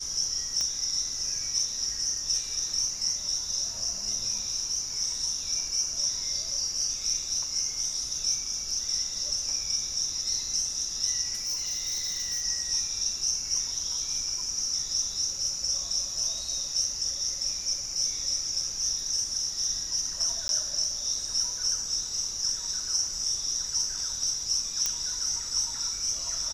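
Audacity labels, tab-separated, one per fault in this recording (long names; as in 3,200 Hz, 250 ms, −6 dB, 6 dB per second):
0.610000	0.610000	click −17 dBFS
11.350000	12.420000	clipping −27 dBFS
20.480000	20.490000	drop-out
24.860000	24.860000	click −11 dBFS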